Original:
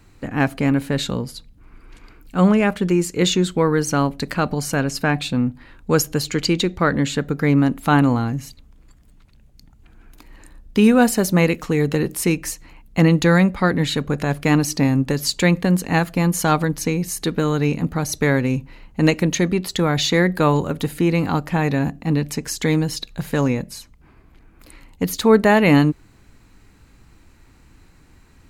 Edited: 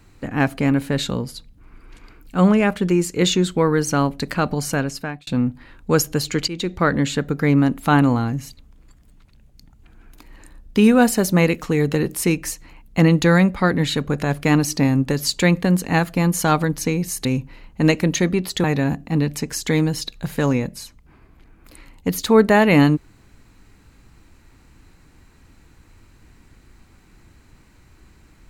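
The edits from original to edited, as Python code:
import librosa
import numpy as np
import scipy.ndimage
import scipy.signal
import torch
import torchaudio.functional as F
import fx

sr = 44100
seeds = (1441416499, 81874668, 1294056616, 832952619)

y = fx.edit(x, sr, fx.fade_out_span(start_s=4.72, length_s=0.55),
    fx.fade_in_from(start_s=6.48, length_s=0.3, floor_db=-15.5),
    fx.cut(start_s=17.25, length_s=1.19),
    fx.cut(start_s=19.83, length_s=1.76), tone=tone)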